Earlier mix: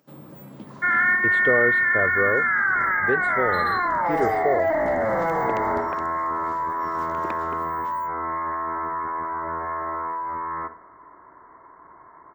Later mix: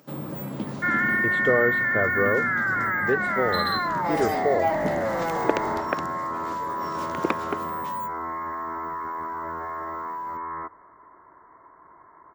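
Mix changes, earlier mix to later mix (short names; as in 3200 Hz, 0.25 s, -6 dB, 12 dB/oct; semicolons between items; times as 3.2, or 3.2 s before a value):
first sound +10.0 dB; reverb: off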